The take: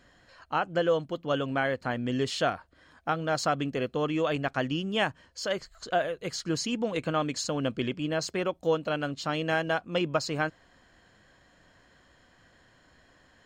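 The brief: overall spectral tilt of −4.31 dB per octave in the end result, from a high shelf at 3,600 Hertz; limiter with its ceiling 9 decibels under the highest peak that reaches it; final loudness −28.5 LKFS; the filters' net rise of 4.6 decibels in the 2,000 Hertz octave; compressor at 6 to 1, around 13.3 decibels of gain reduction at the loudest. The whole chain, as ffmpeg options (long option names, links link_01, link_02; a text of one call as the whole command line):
ffmpeg -i in.wav -af "equalizer=frequency=2000:width_type=o:gain=7.5,highshelf=frequency=3600:gain=-4,acompressor=threshold=-35dB:ratio=6,volume=12dB,alimiter=limit=-17.5dB:level=0:latency=1" out.wav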